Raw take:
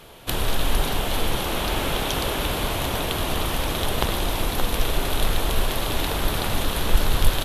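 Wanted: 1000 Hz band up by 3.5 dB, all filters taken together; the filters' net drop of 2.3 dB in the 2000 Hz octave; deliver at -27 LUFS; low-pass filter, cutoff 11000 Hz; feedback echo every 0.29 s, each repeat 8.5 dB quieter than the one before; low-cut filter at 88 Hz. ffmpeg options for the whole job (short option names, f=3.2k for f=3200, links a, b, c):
-af "highpass=88,lowpass=11k,equalizer=f=1k:t=o:g=5.5,equalizer=f=2k:t=o:g=-5,aecho=1:1:290|580|870|1160:0.376|0.143|0.0543|0.0206,volume=-2dB"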